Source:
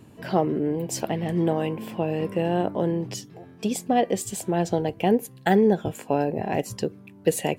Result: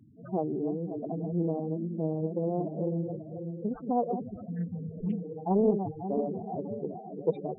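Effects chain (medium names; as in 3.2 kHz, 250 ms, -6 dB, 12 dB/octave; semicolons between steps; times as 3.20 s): backward echo that repeats 270 ms, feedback 72%, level -7 dB; spectral replace 4.43–5.31 s, 220–1600 Hz; decimation with a swept rate 11×, swing 100% 0.64 Hz; loudest bins only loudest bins 8; loudspeaker Doppler distortion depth 0.22 ms; trim -6 dB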